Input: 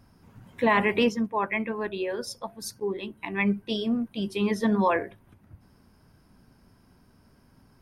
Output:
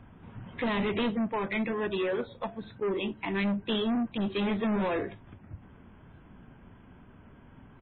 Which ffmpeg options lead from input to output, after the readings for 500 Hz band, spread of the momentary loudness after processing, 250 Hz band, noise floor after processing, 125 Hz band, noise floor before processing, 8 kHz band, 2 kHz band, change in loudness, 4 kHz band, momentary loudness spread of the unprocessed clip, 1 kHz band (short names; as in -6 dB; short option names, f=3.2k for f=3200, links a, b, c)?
-3.0 dB, 19 LU, -2.5 dB, -54 dBFS, -1.5 dB, -60 dBFS, under -35 dB, -6.0 dB, -3.5 dB, -1.5 dB, 12 LU, -7.0 dB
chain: -filter_complex "[0:a]acrossover=split=450|3000[a][b][c];[b]acompressor=threshold=-34dB:ratio=10[d];[a][d][c]amix=inputs=3:normalize=0,aresample=8000,asoftclip=type=tanh:threshold=-32dB,aresample=44100,volume=6.5dB" -ar 12000 -c:a libmp3lame -b:a 16k